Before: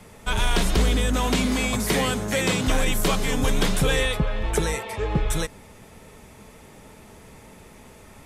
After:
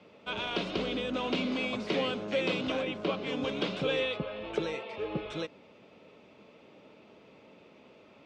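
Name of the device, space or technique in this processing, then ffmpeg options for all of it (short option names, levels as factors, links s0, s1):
kitchen radio: -filter_complex "[0:a]highpass=200,equalizer=f=310:t=q:w=4:g=5,equalizer=f=560:t=q:w=4:g=6,equalizer=f=870:t=q:w=4:g=-4,equalizer=f=1800:t=q:w=4:g=-8,equalizer=f=2700:t=q:w=4:g=5,lowpass=f=4300:w=0.5412,lowpass=f=4300:w=1.3066,asplit=3[s0][s1][s2];[s0]afade=t=out:st=2.81:d=0.02[s3];[s1]lowpass=f=2300:p=1,afade=t=in:st=2.81:d=0.02,afade=t=out:st=3.25:d=0.02[s4];[s2]afade=t=in:st=3.25:d=0.02[s5];[s3][s4][s5]amix=inputs=3:normalize=0,volume=0.398"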